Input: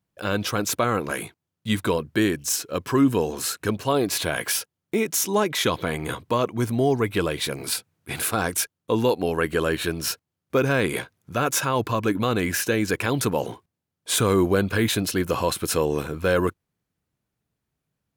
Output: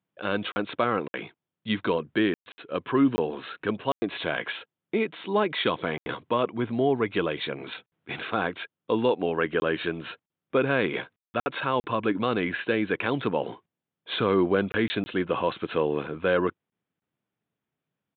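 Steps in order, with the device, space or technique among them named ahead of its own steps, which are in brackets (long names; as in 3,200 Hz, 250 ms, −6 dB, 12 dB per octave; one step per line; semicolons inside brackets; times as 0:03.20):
call with lost packets (high-pass filter 170 Hz 12 dB per octave; downsampling to 8,000 Hz; dropped packets of 20 ms bursts)
level −2 dB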